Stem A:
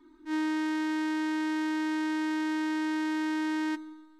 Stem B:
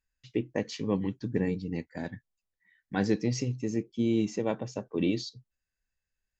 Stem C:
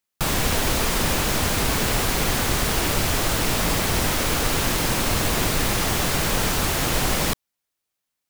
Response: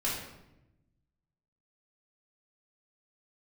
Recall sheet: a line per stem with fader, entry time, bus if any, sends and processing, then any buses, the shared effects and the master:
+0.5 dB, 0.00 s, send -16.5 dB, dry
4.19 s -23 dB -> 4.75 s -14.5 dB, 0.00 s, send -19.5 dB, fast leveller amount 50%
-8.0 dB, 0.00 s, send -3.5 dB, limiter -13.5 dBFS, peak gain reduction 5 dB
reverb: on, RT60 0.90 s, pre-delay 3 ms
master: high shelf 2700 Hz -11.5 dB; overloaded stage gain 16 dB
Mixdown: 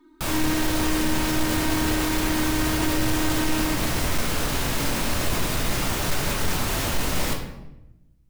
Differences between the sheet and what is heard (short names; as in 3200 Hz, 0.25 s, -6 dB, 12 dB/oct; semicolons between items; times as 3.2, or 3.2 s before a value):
stem B: muted; master: missing high shelf 2700 Hz -11.5 dB